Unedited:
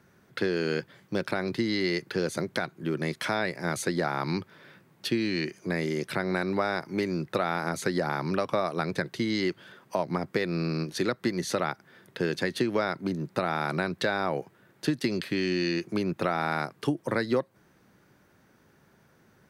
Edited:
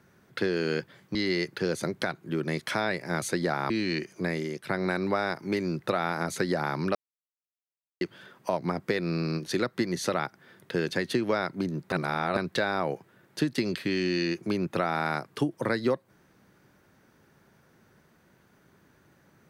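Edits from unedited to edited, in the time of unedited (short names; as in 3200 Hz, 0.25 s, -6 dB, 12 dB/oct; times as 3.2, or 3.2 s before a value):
1.15–1.69 cut
4.24–5.16 cut
5.72–6.15 fade out, to -9.5 dB
8.41–9.47 mute
13.38–13.83 reverse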